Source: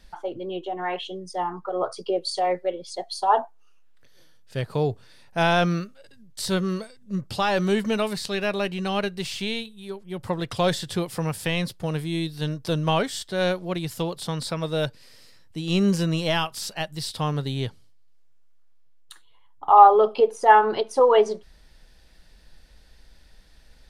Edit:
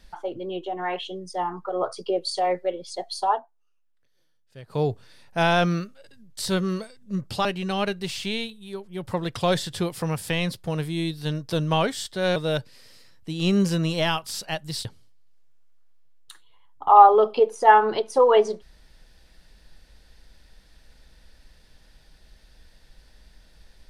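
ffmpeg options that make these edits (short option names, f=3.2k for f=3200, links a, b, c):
-filter_complex "[0:a]asplit=6[a][b][c][d][e][f];[a]atrim=end=3.4,asetpts=PTS-STARTPTS,afade=t=out:st=3.26:d=0.14:silence=0.177828[g];[b]atrim=start=3.4:end=4.66,asetpts=PTS-STARTPTS,volume=-15dB[h];[c]atrim=start=4.66:end=7.452,asetpts=PTS-STARTPTS,afade=t=in:d=0.14:silence=0.177828[i];[d]atrim=start=8.608:end=13.522[j];[e]atrim=start=14.638:end=17.132[k];[f]atrim=start=17.658[l];[g][h][i]concat=n=3:v=0:a=1[m];[m][j]acrossfade=d=0.004:c1=hsin:c2=hsin[n];[n][k]acrossfade=d=0.004:c1=hsin:c2=hsin[o];[o][l]acrossfade=d=0.004:c1=hsin:c2=hsin"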